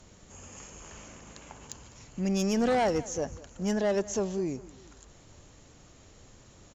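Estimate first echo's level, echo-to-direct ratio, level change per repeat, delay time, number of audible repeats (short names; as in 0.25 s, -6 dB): -19.5 dB, -18.5 dB, -5.0 dB, 0.202 s, 2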